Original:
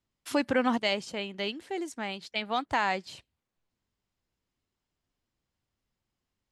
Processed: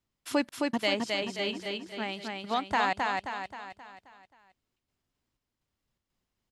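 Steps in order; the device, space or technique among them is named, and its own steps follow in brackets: trance gate with a delay (trance gate "xxxx..xxx." 123 bpm -60 dB; feedback delay 265 ms, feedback 48%, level -3 dB)

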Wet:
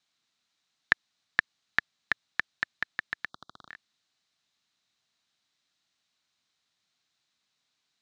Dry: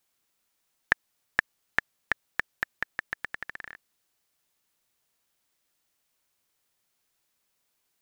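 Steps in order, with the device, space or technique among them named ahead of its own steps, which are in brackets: 3.29–3.69 s: elliptic band-stop 1.3–3.5 kHz, stop band 40 dB; car door speaker (cabinet simulation 100–6700 Hz, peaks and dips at 370 Hz -7 dB, 520 Hz -9 dB, 900 Hz -4 dB, 3.9 kHz +8 dB)

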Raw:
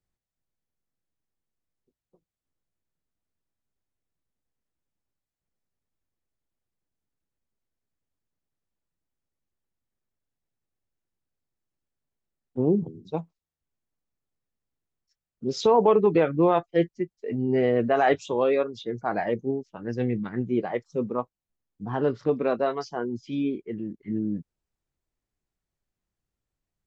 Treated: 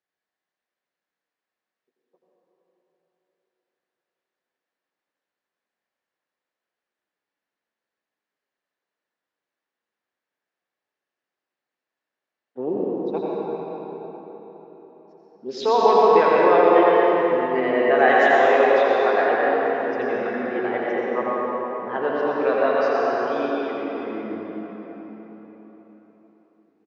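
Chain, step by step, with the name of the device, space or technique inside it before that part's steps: station announcement (band-pass 460–4000 Hz; peaking EQ 1.7 kHz +6 dB 0.34 oct; loudspeakers at several distances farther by 29 m -7 dB, 43 m -9 dB; reverberation RT60 4.6 s, pre-delay 94 ms, DRR -4.5 dB); 18.09–19.28 s: treble shelf 5.3 kHz +5.5 dB; trim +2 dB

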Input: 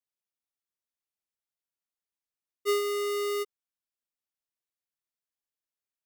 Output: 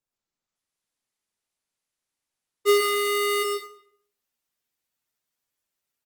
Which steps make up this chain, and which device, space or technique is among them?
speakerphone in a meeting room (reverberation RT60 0.55 s, pre-delay 88 ms, DRR 2 dB; speakerphone echo 240 ms, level -26 dB; level rider gain up to 9.5 dB; trim -1.5 dB; Opus 20 kbps 48 kHz)

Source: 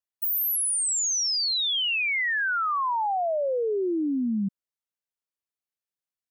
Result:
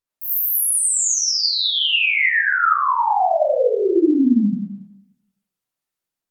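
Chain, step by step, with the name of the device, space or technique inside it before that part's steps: far-field microphone of a smart speaker (reverberation RT60 0.65 s, pre-delay 44 ms, DRR -8.5 dB; high-pass 97 Hz 24 dB/octave; level rider gain up to 4 dB; trim -3 dB; Opus 32 kbps 48 kHz)

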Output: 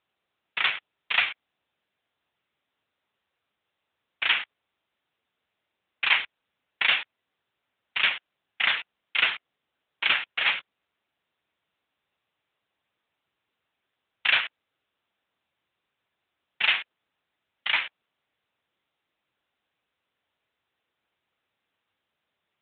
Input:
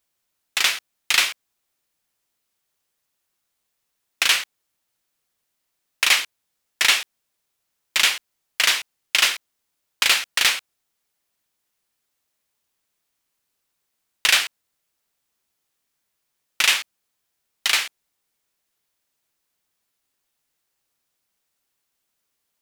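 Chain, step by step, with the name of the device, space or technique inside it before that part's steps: 4.39–6.18 s: steep high-pass 160 Hz 72 dB/octave; telephone (band-pass 300–3500 Hz; AMR-NB 10.2 kbps 8 kHz)

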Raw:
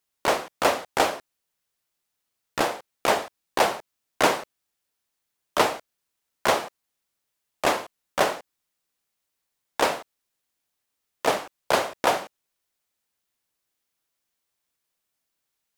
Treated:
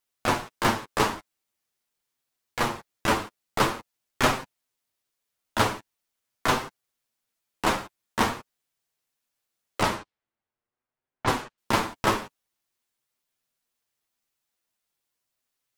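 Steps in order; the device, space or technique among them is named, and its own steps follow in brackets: alien voice (ring modulator 350 Hz; flange 0.45 Hz, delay 7.6 ms, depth 2 ms, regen -13%); 9.83–11.58 s: level-controlled noise filter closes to 1.5 kHz, open at -27 dBFS; trim +4.5 dB

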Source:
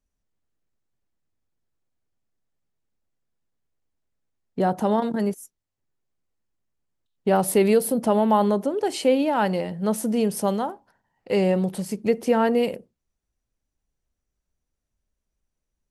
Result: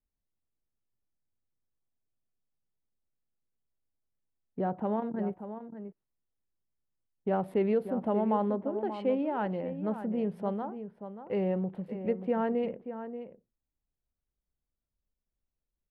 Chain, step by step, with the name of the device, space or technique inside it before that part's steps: local Wiener filter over 9 samples; shout across a valley (distance through air 490 m; echo from a far wall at 100 m, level -10 dB); trim -8 dB

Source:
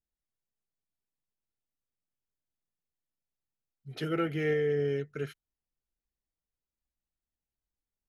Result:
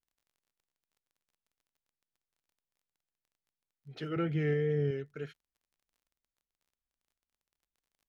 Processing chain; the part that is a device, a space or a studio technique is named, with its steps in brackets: lo-fi chain (low-pass 5.6 kHz 12 dB/octave; wow and flutter; crackle 31 per s -55 dBFS); 4.16–4.91 s: peaking EQ 140 Hz +9.5 dB 1.6 oct; trim -5 dB

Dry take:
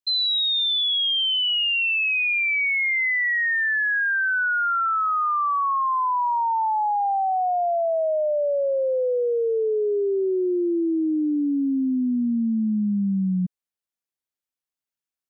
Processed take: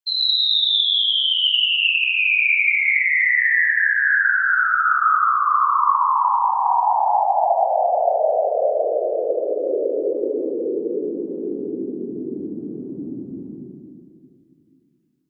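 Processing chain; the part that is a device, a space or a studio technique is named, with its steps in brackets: whispering ghost (whisper effect; high-pass 550 Hz 12 dB/octave; reverberation RT60 2.4 s, pre-delay 68 ms, DRR -3.5 dB)

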